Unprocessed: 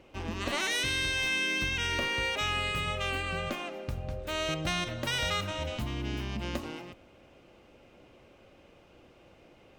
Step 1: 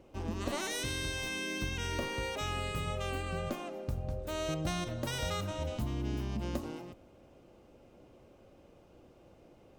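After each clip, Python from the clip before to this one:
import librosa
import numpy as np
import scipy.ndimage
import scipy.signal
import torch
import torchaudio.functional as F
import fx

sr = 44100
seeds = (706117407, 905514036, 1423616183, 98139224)

y = fx.peak_eq(x, sr, hz=2400.0, db=-10.5, octaves=2.0)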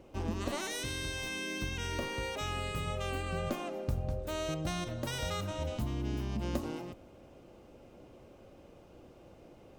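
y = fx.rider(x, sr, range_db=10, speed_s=0.5)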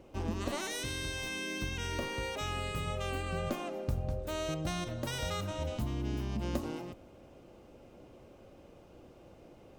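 y = x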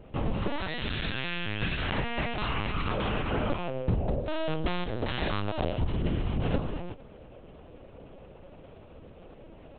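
y = fx.lpc_vocoder(x, sr, seeds[0], excitation='pitch_kept', order=8)
y = y * librosa.db_to_amplitude(6.5)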